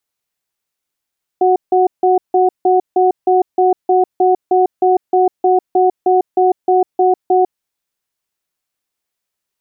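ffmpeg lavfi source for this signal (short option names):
-f lavfi -i "aevalsrc='0.282*(sin(2*PI*369*t)+sin(2*PI*737*t))*clip(min(mod(t,0.31),0.15-mod(t,0.31))/0.005,0,1)':d=6.14:s=44100"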